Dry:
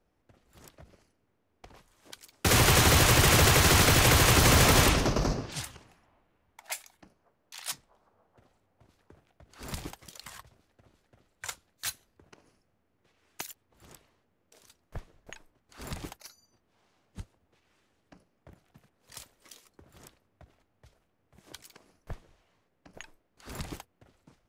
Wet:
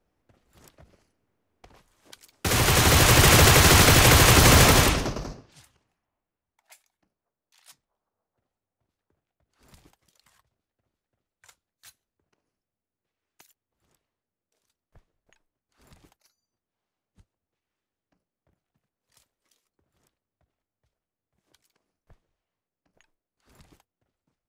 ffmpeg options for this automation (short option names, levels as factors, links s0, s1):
-af "volume=1.88,afade=t=in:st=2.51:d=0.75:silence=0.473151,afade=t=out:st=4.6:d=0.59:silence=0.266073,afade=t=out:st=5.19:d=0.25:silence=0.281838"